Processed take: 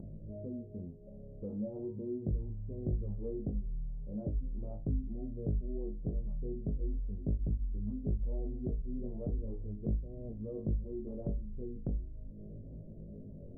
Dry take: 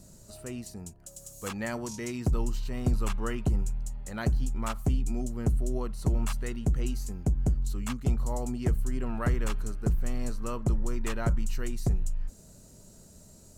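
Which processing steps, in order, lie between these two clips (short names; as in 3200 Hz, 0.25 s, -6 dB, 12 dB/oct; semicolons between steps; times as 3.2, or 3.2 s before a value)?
elliptic low-pass 560 Hz, stop band 80 dB; resonator 52 Hz, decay 0.27 s, harmonics all, mix 100%; compressor, threshold -33 dBFS, peak gain reduction 8 dB; chorus 0.39 Hz, delay 18 ms, depth 6.5 ms; upward compressor, threshold -40 dBFS; gain +5 dB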